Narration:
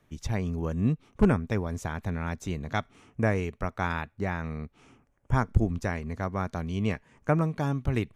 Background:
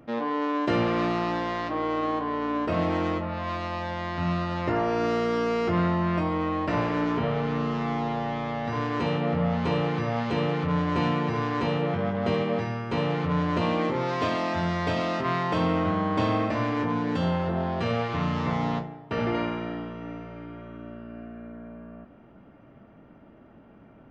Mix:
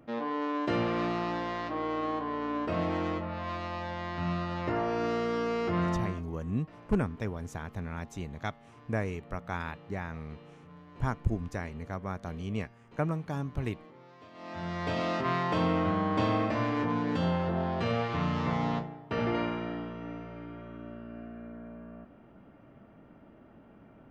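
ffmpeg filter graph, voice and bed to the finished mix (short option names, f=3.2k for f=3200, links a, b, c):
-filter_complex "[0:a]adelay=5700,volume=-6dB[a];[1:a]volume=18.5dB,afade=t=out:st=5.95:d=0.27:silence=0.0841395,afade=t=in:st=14.33:d=0.76:silence=0.0668344[b];[a][b]amix=inputs=2:normalize=0"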